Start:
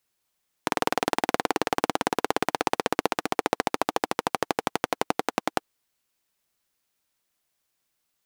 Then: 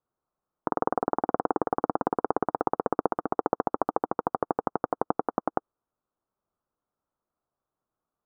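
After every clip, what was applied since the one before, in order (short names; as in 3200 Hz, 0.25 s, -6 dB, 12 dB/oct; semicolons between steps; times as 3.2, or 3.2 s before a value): elliptic low-pass 1300 Hz, stop band 70 dB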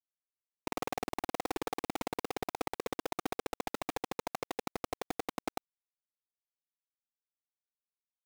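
limiter -18.5 dBFS, peak gain reduction 11.5 dB; companded quantiser 2-bit; gain -3 dB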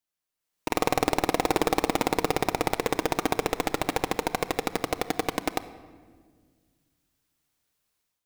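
AGC gain up to 11.5 dB; transient shaper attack -11 dB, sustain +1 dB; shoebox room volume 2200 m³, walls mixed, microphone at 0.51 m; gain +7.5 dB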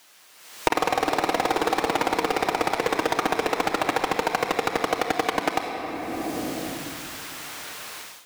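AGC gain up to 10 dB; overdrive pedal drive 23 dB, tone 5000 Hz, clips at -1 dBFS; three-band squash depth 100%; gain -9 dB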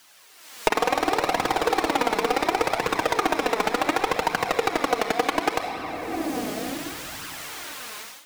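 flange 0.69 Hz, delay 0.6 ms, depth 4.3 ms, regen +33%; gain +4.5 dB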